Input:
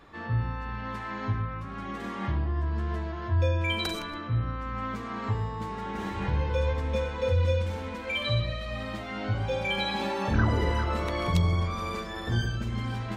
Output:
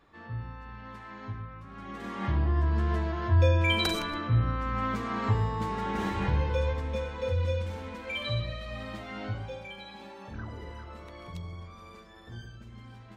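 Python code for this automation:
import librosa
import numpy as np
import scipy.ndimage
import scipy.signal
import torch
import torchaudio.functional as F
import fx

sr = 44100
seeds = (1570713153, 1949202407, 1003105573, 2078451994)

y = fx.gain(x, sr, db=fx.line((1.61, -9.0), (2.48, 3.0), (6.04, 3.0), (6.96, -4.0), (9.25, -4.0), (9.78, -16.0)))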